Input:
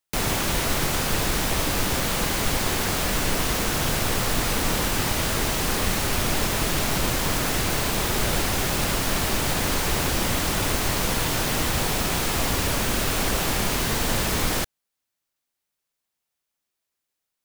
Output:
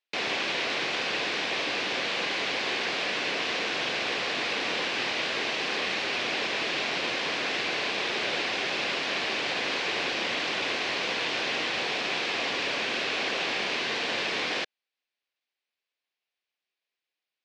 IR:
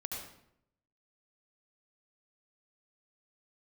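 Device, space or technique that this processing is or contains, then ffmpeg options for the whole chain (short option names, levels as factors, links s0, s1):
phone earpiece: -af "highpass=460,equalizer=f=620:t=q:w=4:g=-3,equalizer=f=900:t=q:w=4:g=-6,equalizer=f=1300:t=q:w=4:g=-7,equalizer=f=2500:t=q:w=4:g=4,lowpass=f=4500:w=0.5412,lowpass=f=4500:w=1.3066"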